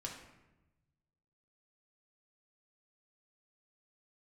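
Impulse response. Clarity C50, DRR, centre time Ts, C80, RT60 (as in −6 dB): 5.0 dB, −1.5 dB, 36 ms, 7.5 dB, 1.0 s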